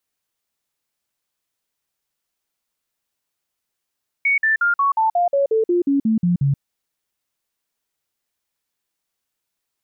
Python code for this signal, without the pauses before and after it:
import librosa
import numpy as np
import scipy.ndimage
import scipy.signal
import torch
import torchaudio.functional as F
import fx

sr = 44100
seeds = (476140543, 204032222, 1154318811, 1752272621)

y = fx.stepped_sweep(sr, from_hz=2230.0, direction='down', per_octave=3, tones=13, dwell_s=0.13, gap_s=0.05, level_db=-14.0)